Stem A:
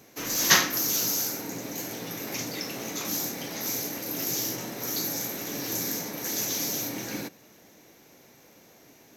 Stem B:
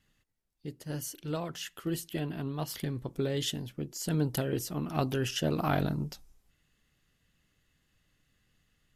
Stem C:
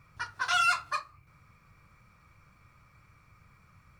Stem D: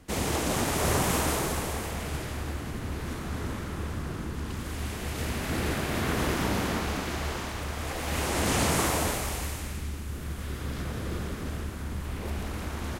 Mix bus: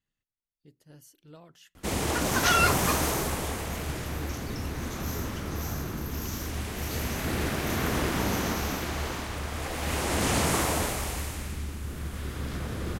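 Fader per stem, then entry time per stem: -11.0 dB, -15.5 dB, +1.5 dB, 0.0 dB; 1.95 s, 0.00 s, 1.95 s, 1.75 s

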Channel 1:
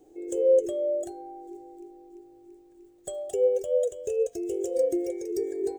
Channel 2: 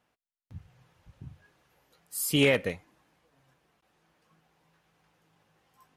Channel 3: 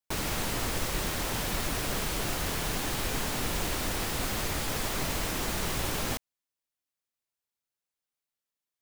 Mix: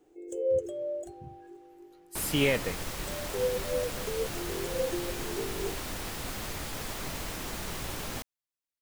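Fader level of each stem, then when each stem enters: -7.0 dB, -3.0 dB, -5.5 dB; 0.00 s, 0.00 s, 2.05 s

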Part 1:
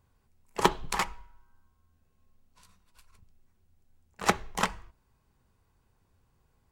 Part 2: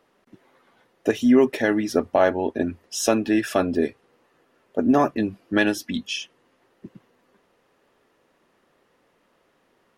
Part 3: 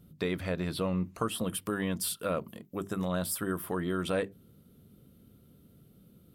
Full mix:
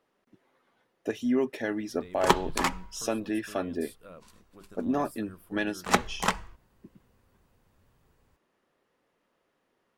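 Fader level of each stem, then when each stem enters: +1.5 dB, -10.0 dB, -17.0 dB; 1.65 s, 0.00 s, 1.80 s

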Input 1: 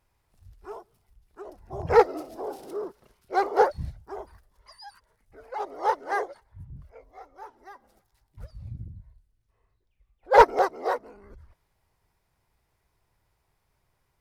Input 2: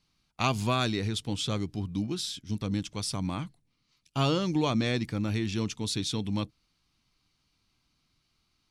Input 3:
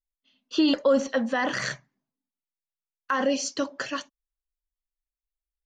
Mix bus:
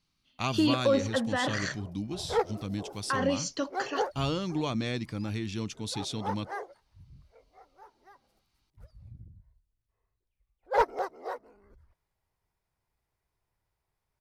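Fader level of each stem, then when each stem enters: -10.0 dB, -4.0 dB, -4.0 dB; 0.40 s, 0.00 s, 0.00 s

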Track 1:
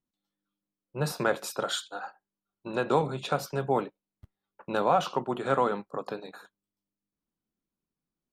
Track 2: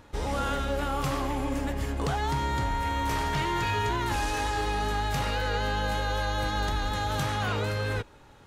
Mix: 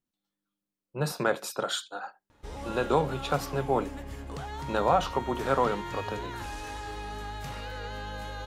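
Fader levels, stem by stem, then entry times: 0.0 dB, -9.5 dB; 0.00 s, 2.30 s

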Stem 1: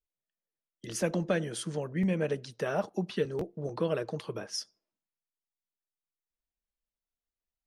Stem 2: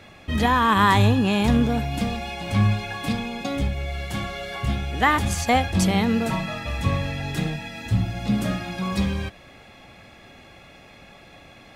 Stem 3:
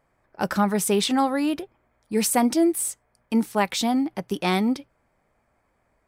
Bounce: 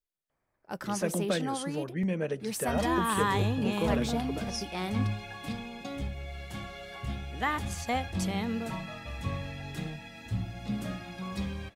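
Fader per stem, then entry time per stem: -1.5 dB, -11.0 dB, -12.5 dB; 0.00 s, 2.40 s, 0.30 s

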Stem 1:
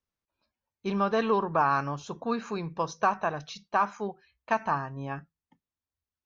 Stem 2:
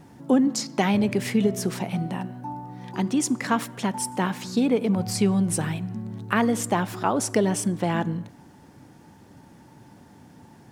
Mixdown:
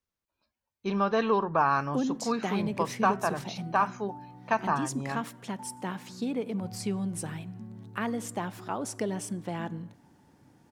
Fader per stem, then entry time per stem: 0.0 dB, -10.0 dB; 0.00 s, 1.65 s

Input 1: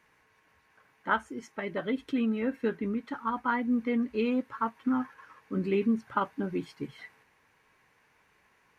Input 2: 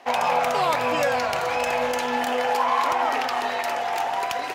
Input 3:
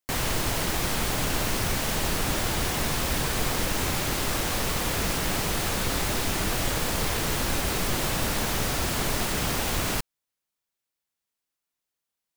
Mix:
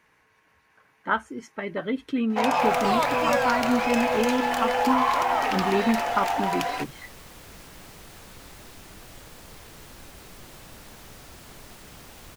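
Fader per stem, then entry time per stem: +3.0 dB, -1.0 dB, -19.0 dB; 0.00 s, 2.30 s, 2.50 s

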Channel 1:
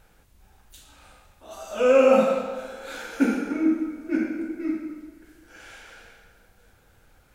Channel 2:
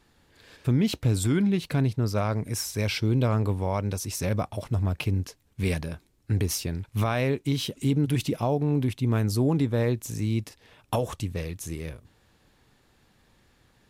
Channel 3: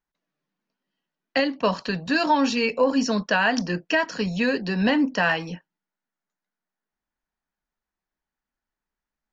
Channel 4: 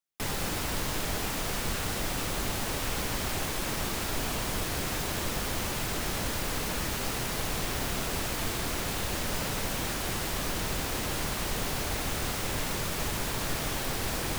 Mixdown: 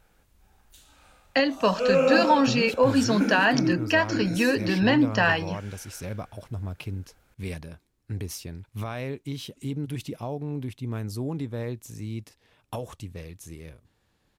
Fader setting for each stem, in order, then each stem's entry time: -4.5 dB, -7.5 dB, 0.0 dB, mute; 0.00 s, 1.80 s, 0.00 s, mute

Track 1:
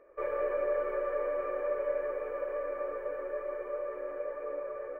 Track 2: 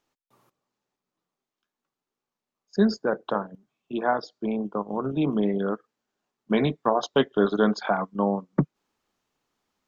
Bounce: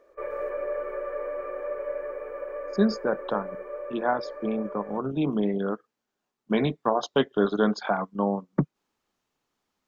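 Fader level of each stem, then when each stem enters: 0.0 dB, -1.5 dB; 0.00 s, 0.00 s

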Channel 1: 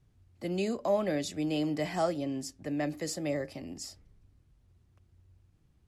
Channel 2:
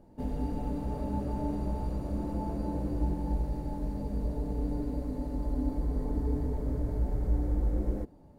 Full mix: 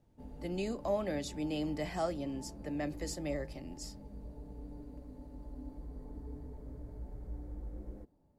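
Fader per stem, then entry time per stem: -5.0 dB, -15.0 dB; 0.00 s, 0.00 s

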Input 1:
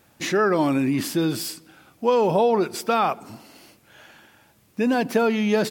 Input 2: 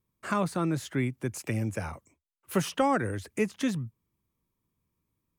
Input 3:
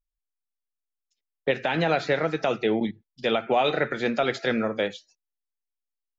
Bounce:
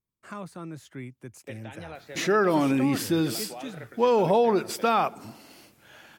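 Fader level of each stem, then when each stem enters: -2.0 dB, -10.5 dB, -19.0 dB; 1.95 s, 0.00 s, 0.00 s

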